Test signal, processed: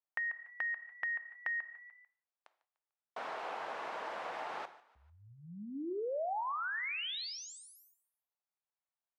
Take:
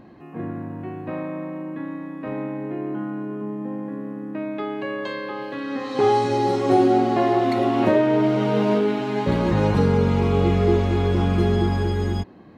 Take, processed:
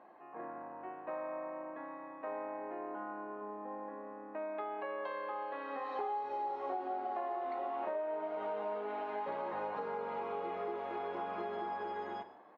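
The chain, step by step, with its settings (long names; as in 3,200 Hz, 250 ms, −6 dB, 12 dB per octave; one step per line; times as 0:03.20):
four-pole ladder band-pass 950 Hz, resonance 30%
on a send: echo with shifted repeats 148 ms, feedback 44%, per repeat +37 Hz, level −21.5 dB
on the sum: reverb whose tail is shaped and stops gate 200 ms falling, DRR 12 dB
downward compressor 6 to 1, threshold −42 dBFS
level +6 dB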